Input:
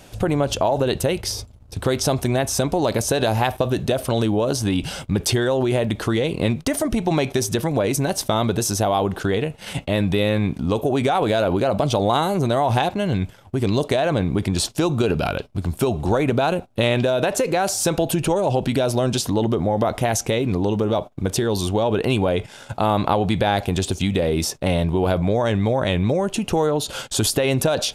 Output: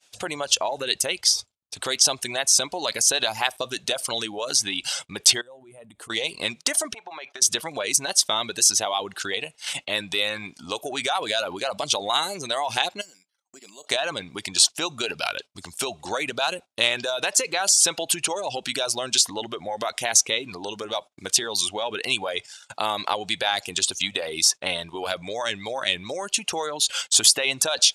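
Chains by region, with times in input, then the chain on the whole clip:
0:05.41–0:06.10: drawn EQ curve 180 Hz 0 dB, 320 Hz −5 dB, 490 Hz −6 dB, 5,900 Hz −22 dB, 8,500 Hz −6 dB + downward compressor 10 to 1, threshold −27 dBFS
0:06.94–0:07.42: resonant band-pass 1,000 Hz, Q 0.82 + parametric band 970 Hz +3 dB 1.7 octaves + downward compressor 4 to 1, threshold −28 dBFS
0:13.01–0:13.87: downward compressor 16 to 1, threshold −29 dBFS + bad sample-rate conversion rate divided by 6×, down filtered, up hold + linear-phase brick-wall high-pass 150 Hz
whole clip: reverb reduction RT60 0.79 s; downward expander −36 dBFS; meter weighting curve ITU-R 468; level −3.5 dB

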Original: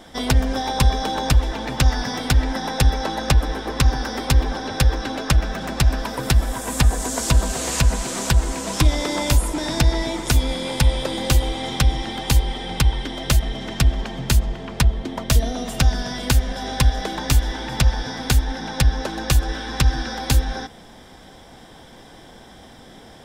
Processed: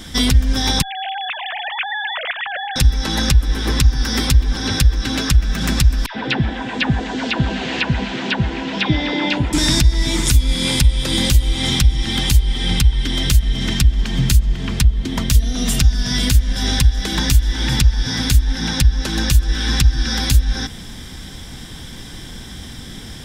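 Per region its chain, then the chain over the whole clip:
0:00.82–0:02.76: three sine waves on the formant tracks + downward compressor 5 to 1, threshold −21 dBFS + high-frequency loss of the air 480 metres
0:06.06–0:09.53: loudspeaker in its box 230–3,000 Hz, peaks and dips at 780 Hz +6 dB, 1,200 Hz −8 dB, 2,200 Hz −3 dB + all-pass dispersion lows, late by 93 ms, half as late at 950 Hz
whole clip: guitar amp tone stack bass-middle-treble 6-0-2; downward compressor 6 to 1, threshold −37 dBFS; boost into a limiter +29.5 dB; level −1 dB

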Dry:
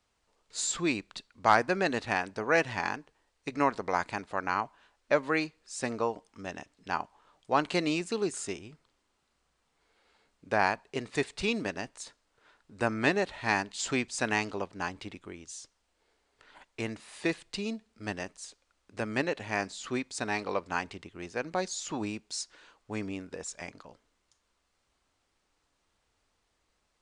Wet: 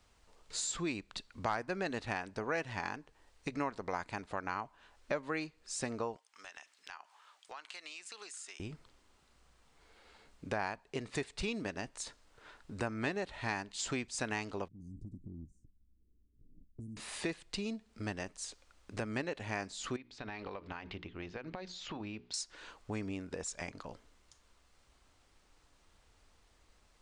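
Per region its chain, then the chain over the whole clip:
0:06.16–0:08.60: high-pass filter 1,300 Hz + downward compressor 4 to 1, threshold −53 dBFS
0:14.68–0:16.97: inverse Chebyshev band-stop filter 1,000–2,700 Hz, stop band 80 dB + low-pass that shuts in the quiet parts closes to 570 Hz, open at −38.5 dBFS + downward compressor 10 to 1, threshold −50 dBFS
0:19.96–0:22.34: mains-hum notches 60/120/180/240/300/360/420 Hz + downward compressor, threshold −36 dBFS + transistor ladder low-pass 4,500 Hz, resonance 25%
whole clip: low-shelf EQ 89 Hz +9 dB; downward compressor 2.5 to 1, threshold −47 dBFS; level +6 dB

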